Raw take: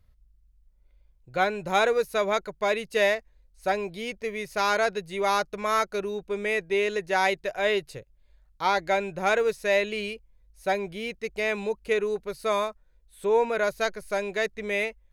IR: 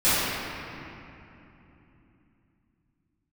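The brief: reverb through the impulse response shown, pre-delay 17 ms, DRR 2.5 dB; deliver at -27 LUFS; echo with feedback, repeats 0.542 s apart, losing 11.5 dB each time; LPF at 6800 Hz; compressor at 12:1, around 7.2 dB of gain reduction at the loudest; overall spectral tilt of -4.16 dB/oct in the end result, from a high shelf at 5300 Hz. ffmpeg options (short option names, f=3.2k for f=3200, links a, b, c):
-filter_complex "[0:a]lowpass=6.8k,highshelf=f=5.3k:g=4.5,acompressor=threshold=-25dB:ratio=12,aecho=1:1:542|1084|1626:0.266|0.0718|0.0194,asplit=2[a][b];[1:a]atrim=start_sample=2205,adelay=17[c];[b][c]afir=irnorm=-1:irlink=0,volume=-22dB[d];[a][d]amix=inputs=2:normalize=0,volume=2.5dB"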